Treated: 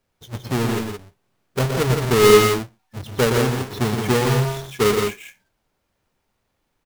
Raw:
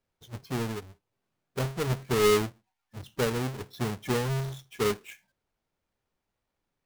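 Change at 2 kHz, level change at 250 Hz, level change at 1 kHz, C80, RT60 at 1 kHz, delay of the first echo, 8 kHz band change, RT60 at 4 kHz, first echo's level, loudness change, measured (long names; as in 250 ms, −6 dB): +11.0 dB, +10.5 dB, +11.0 dB, no reverb audible, no reverb audible, 119 ms, +11.0 dB, no reverb audible, −6.0 dB, +10.5 dB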